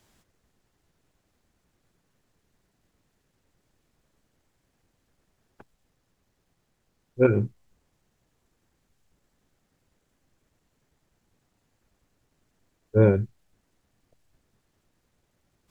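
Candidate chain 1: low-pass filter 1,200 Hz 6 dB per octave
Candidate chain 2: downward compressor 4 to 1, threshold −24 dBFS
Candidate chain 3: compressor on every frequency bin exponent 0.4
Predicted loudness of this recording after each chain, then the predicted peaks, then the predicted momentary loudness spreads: −23.5, −31.0, −30.5 LKFS; −7.0, −15.0, −4.0 dBFS; 13, 13, 17 LU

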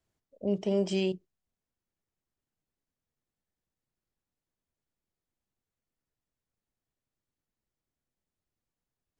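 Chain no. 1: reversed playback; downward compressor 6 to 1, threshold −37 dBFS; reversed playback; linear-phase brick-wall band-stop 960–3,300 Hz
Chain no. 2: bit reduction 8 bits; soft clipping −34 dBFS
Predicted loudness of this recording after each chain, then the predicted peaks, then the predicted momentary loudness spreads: −42.5, −39.5 LKFS; −28.5, −34.0 dBFS; 7, 8 LU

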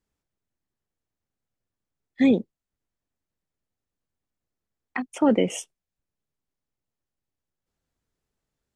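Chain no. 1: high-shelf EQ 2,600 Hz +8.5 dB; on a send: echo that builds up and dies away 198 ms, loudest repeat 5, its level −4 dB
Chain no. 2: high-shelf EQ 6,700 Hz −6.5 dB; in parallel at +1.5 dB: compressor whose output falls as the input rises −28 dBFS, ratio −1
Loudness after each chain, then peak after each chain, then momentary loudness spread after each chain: −23.0, −21.0 LKFS; −7.5, −3.5 dBFS; 6, 11 LU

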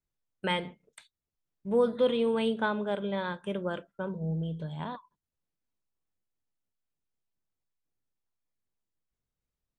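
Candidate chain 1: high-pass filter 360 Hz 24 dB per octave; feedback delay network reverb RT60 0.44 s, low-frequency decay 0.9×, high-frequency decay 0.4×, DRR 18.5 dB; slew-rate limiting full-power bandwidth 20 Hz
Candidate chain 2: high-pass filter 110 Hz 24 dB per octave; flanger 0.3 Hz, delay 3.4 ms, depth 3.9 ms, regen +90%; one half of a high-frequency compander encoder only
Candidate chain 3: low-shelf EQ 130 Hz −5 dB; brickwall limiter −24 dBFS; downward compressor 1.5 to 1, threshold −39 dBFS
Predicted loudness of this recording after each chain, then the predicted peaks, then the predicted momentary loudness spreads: −36.5, −35.5, −38.5 LKFS; −20.0, −18.5, −26.0 dBFS; 13, 18, 13 LU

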